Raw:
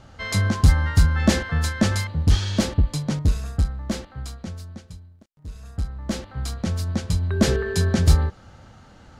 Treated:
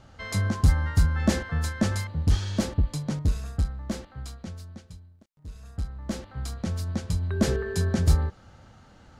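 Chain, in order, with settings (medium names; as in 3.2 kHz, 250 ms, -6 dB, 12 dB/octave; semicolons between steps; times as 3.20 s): dynamic bell 3.3 kHz, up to -4 dB, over -39 dBFS, Q 0.75; trim -4.5 dB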